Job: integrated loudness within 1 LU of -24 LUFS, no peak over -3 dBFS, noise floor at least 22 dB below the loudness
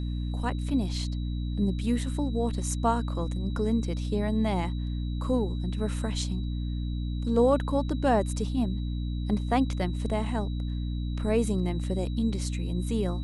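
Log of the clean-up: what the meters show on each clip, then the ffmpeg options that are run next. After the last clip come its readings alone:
hum 60 Hz; harmonics up to 300 Hz; hum level -28 dBFS; steady tone 3900 Hz; tone level -50 dBFS; loudness -29.0 LUFS; peak -10.5 dBFS; loudness target -24.0 LUFS
-> -af "bandreject=f=60:t=h:w=4,bandreject=f=120:t=h:w=4,bandreject=f=180:t=h:w=4,bandreject=f=240:t=h:w=4,bandreject=f=300:t=h:w=4"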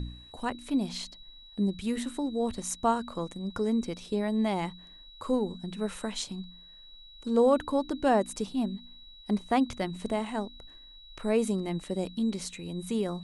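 hum none; steady tone 3900 Hz; tone level -50 dBFS
-> -af "bandreject=f=3.9k:w=30"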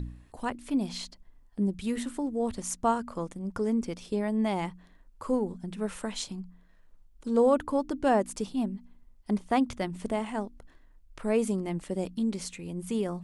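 steady tone none; loudness -30.5 LUFS; peak -12.0 dBFS; loudness target -24.0 LUFS
-> -af "volume=6.5dB"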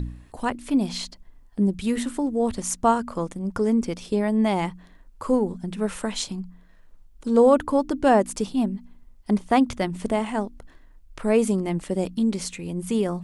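loudness -24.0 LUFS; peak -5.5 dBFS; noise floor -51 dBFS

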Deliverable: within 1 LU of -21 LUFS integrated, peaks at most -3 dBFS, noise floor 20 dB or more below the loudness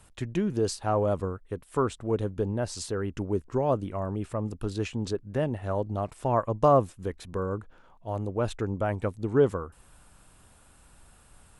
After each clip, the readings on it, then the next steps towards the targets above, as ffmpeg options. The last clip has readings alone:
loudness -29.0 LUFS; peak -10.0 dBFS; loudness target -21.0 LUFS
-> -af "volume=8dB,alimiter=limit=-3dB:level=0:latency=1"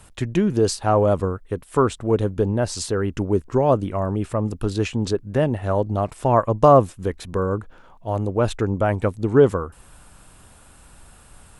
loudness -21.5 LUFS; peak -3.0 dBFS; noise floor -49 dBFS

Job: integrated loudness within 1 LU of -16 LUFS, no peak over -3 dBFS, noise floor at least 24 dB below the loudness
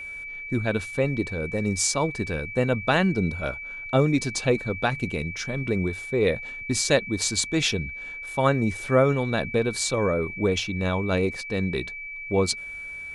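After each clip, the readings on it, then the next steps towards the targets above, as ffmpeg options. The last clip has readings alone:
steady tone 2300 Hz; tone level -34 dBFS; loudness -25.5 LUFS; peak -7.5 dBFS; loudness target -16.0 LUFS
-> -af "bandreject=f=2.3k:w=30"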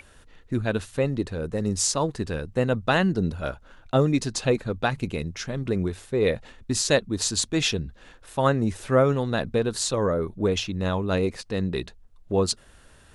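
steady tone none; loudness -25.5 LUFS; peak -8.0 dBFS; loudness target -16.0 LUFS
-> -af "volume=9.5dB,alimiter=limit=-3dB:level=0:latency=1"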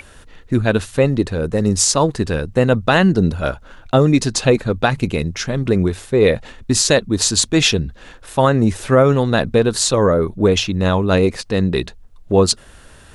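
loudness -16.5 LUFS; peak -3.0 dBFS; noise floor -43 dBFS

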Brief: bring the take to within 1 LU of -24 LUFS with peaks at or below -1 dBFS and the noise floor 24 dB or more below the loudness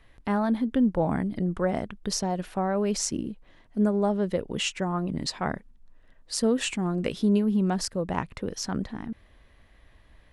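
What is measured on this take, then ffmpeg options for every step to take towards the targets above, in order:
loudness -27.5 LUFS; peak -10.5 dBFS; loudness target -24.0 LUFS
-> -af "volume=3.5dB"

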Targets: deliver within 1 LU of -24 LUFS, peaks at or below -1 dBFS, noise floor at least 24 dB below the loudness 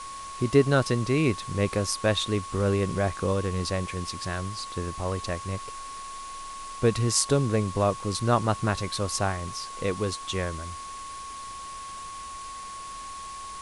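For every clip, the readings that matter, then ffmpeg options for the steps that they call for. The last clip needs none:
steady tone 1100 Hz; tone level -37 dBFS; noise floor -39 dBFS; noise floor target -52 dBFS; loudness -28.0 LUFS; peak -5.5 dBFS; loudness target -24.0 LUFS
-> -af "bandreject=f=1.1k:w=30"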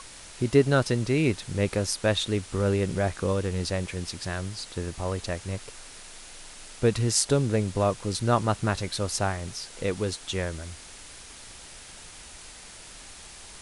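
steady tone none; noise floor -46 dBFS; noise floor target -51 dBFS
-> -af "afftdn=nr=6:nf=-46"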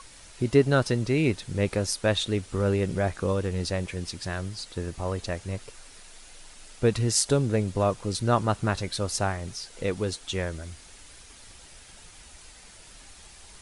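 noise floor -50 dBFS; noise floor target -51 dBFS
-> -af "afftdn=nr=6:nf=-50"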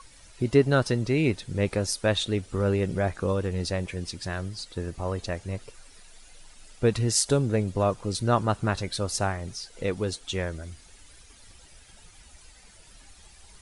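noise floor -53 dBFS; loudness -27.5 LUFS; peak -5.5 dBFS; loudness target -24.0 LUFS
-> -af "volume=3.5dB"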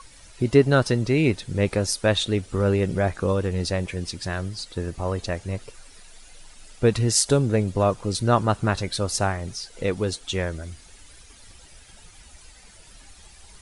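loudness -24.0 LUFS; peak -2.0 dBFS; noise floor -50 dBFS

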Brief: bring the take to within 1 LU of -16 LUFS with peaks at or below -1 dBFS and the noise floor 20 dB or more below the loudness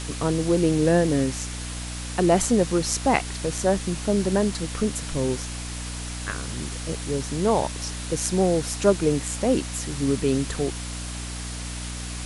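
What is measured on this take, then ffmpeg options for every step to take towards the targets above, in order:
hum 60 Hz; harmonics up to 300 Hz; hum level -32 dBFS; noise floor -33 dBFS; noise floor target -45 dBFS; loudness -25.0 LUFS; peak -5.0 dBFS; loudness target -16.0 LUFS
-> -af "bandreject=f=60:t=h:w=4,bandreject=f=120:t=h:w=4,bandreject=f=180:t=h:w=4,bandreject=f=240:t=h:w=4,bandreject=f=300:t=h:w=4"
-af "afftdn=nr=12:nf=-33"
-af "volume=9dB,alimiter=limit=-1dB:level=0:latency=1"

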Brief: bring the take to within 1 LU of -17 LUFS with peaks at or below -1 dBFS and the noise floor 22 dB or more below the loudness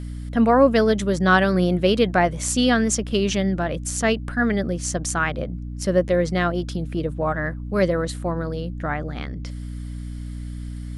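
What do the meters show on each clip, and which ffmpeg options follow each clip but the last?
hum 60 Hz; harmonics up to 300 Hz; hum level -29 dBFS; loudness -21.5 LUFS; peak -4.0 dBFS; loudness target -17.0 LUFS
-> -af "bandreject=f=60:t=h:w=6,bandreject=f=120:t=h:w=6,bandreject=f=180:t=h:w=6,bandreject=f=240:t=h:w=6,bandreject=f=300:t=h:w=6"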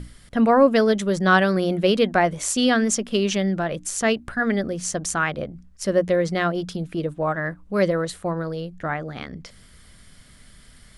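hum none; loudness -22.0 LUFS; peak -4.0 dBFS; loudness target -17.0 LUFS
-> -af "volume=5dB,alimiter=limit=-1dB:level=0:latency=1"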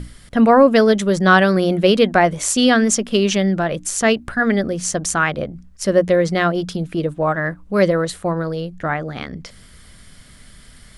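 loudness -17.0 LUFS; peak -1.0 dBFS; noise floor -45 dBFS

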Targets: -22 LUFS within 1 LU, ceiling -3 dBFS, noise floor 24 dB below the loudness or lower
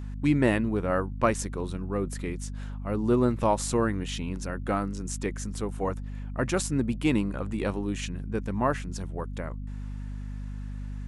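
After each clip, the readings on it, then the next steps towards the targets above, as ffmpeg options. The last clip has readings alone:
hum 50 Hz; harmonics up to 250 Hz; hum level -33 dBFS; loudness -29.5 LUFS; peak -9.0 dBFS; loudness target -22.0 LUFS
-> -af "bandreject=f=50:t=h:w=4,bandreject=f=100:t=h:w=4,bandreject=f=150:t=h:w=4,bandreject=f=200:t=h:w=4,bandreject=f=250:t=h:w=4"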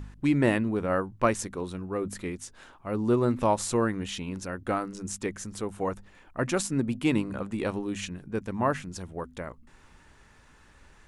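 hum none; loudness -29.5 LUFS; peak -9.5 dBFS; loudness target -22.0 LUFS
-> -af "volume=7.5dB,alimiter=limit=-3dB:level=0:latency=1"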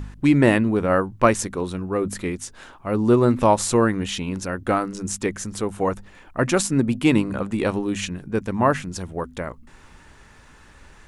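loudness -22.0 LUFS; peak -3.0 dBFS; noise floor -49 dBFS

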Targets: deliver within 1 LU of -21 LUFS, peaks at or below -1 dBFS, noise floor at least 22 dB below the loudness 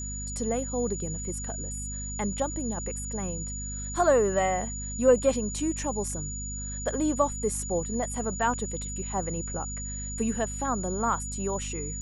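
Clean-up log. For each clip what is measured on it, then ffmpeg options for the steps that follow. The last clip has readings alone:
hum 50 Hz; harmonics up to 250 Hz; hum level -35 dBFS; steady tone 6900 Hz; tone level -36 dBFS; loudness -29.0 LUFS; peak -9.0 dBFS; loudness target -21.0 LUFS
-> -af "bandreject=f=50:t=h:w=4,bandreject=f=100:t=h:w=4,bandreject=f=150:t=h:w=4,bandreject=f=200:t=h:w=4,bandreject=f=250:t=h:w=4"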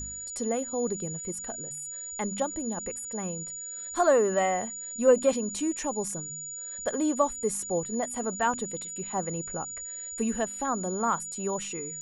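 hum none; steady tone 6900 Hz; tone level -36 dBFS
-> -af "bandreject=f=6.9k:w=30"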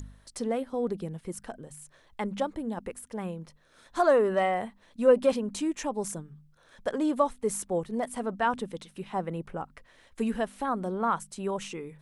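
steady tone none; loudness -30.0 LUFS; peak -9.0 dBFS; loudness target -21.0 LUFS
-> -af "volume=9dB,alimiter=limit=-1dB:level=0:latency=1"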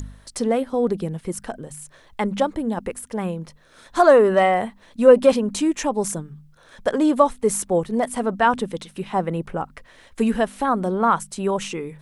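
loudness -21.0 LUFS; peak -1.0 dBFS; noise floor -52 dBFS

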